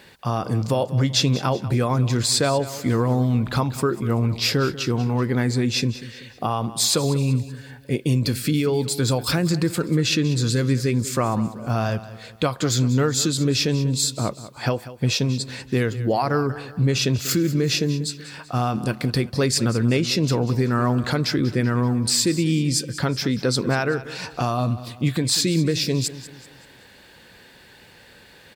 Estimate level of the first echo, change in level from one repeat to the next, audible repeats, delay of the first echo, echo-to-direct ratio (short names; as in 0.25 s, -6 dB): -15.5 dB, -7.5 dB, 3, 0.191 s, -14.5 dB